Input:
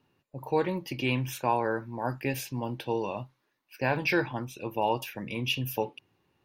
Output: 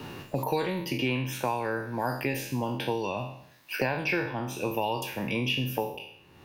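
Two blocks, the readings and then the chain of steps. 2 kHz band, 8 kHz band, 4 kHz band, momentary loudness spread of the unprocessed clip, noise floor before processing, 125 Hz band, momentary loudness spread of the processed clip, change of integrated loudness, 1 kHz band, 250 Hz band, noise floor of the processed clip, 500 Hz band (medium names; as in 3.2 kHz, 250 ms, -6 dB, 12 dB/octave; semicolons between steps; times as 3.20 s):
+1.5 dB, +1.5 dB, +2.0 dB, 9 LU, -76 dBFS, +1.0 dB, 8 LU, +0.5 dB, -0.5 dB, +1.5 dB, -56 dBFS, 0.0 dB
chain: spectral sustain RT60 0.49 s; three bands compressed up and down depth 100%; trim -1.5 dB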